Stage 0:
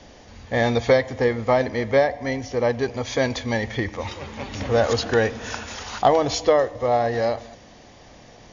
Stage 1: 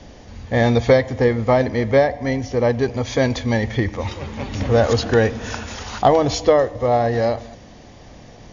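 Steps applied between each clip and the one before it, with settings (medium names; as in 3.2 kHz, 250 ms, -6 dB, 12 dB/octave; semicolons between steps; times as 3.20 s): bass shelf 330 Hz +7.5 dB; trim +1 dB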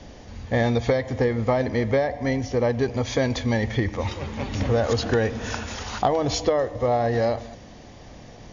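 compression 6:1, threshold -16 dBFS, peak gain reduction 8 dB; trim -1.5 dB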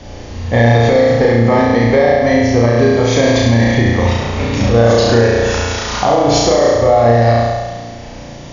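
on a send: flutter echo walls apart 5.9 m, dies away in 1.4 s; on the sum: loudness maximiser +9 dB; trim -1 dB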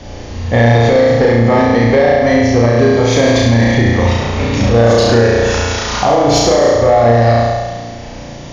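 saturation -3 dBFS, distortion -22 dB; trim +2 dB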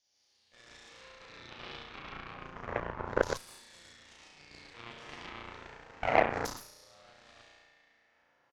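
LFO band-pass saw down 0.31 Hz 510–5800 Hz; loudspeakers at several distances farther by 40 m -1 dB, 51 m -5 dB; Chebyshev shaper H 3 -9 dB, 6 -26 dB, 8 -45 dB, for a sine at -1 dBFS; trim -7 dB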